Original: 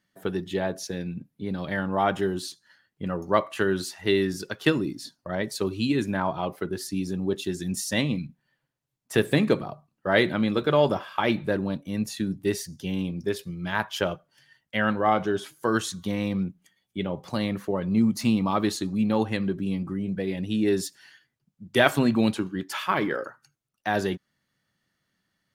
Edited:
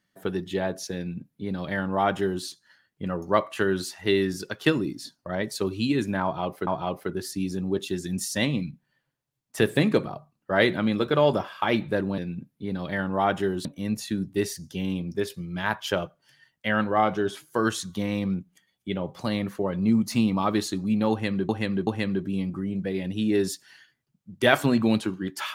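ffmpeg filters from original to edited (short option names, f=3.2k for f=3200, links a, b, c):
-filter_complex "[0:a]asplit=6[a][b][c][d][e][f];[a]atrim=end=6.672[g];[b]atrim=start=6.228:end=11.742[h];[c]atrim=start=0.968:end=2.442[i];[d]atrim=start=11.738:end=19.582[j];[e]atrim=start=19.198:end=19.582[k];[f]atrim=start=19.198[l];[g][h]acrossfade=d=0.004:c1=hsin:c2=hsin[m];[m][i]acrossfade=d=0.004:c1=hsin:c2=hsin[n];[n][j]acrossfade=d=0.004:c1=hsin:c2=hsin[o];[o][k]acrossfade=d=0.004:c1=hsin:c2=hsin[p];[p][l]acrossfade=d=0.004:c1=hsin:c2=hsin"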